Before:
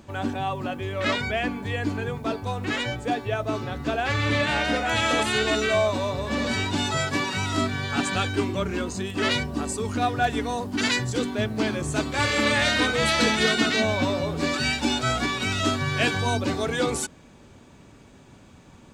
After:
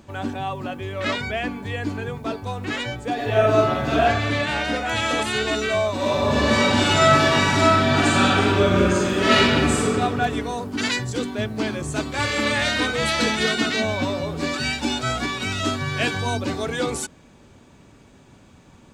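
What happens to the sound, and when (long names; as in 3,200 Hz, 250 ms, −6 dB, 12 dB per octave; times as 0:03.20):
0:03.14–0:04.02: thrown reverb, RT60 0.99 s, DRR −7 dB
0:05.95–0:09.83: thrown reverb, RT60 2.4 s, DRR −8 dB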